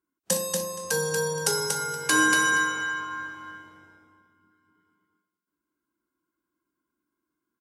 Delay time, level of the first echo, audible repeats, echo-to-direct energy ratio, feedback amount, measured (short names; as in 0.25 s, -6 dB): 0.236 s, -3.5 dB, 3, -3.5 dB, 17%